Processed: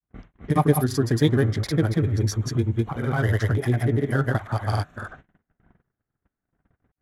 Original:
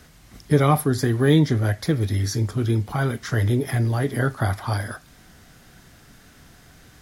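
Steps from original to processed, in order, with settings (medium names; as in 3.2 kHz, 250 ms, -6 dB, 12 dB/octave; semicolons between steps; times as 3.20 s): local Wiener filter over 9 samples; granulator, spray 206 ms, pitch spread up and down by 0 st; gate -47 dBFS, range -38 dB; in parallel at -3 dB: compression, threshold -39 dBFS, peak gain reduction 24 dB; on the sum: level-controlled noise filter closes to 1.6 kHz, open at -27 dBFS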